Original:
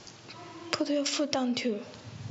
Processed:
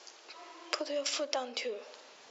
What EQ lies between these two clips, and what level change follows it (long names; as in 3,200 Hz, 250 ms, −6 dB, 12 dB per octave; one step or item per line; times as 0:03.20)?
high-pass filter 410 Hz 24 dB per octave
−3.0 dB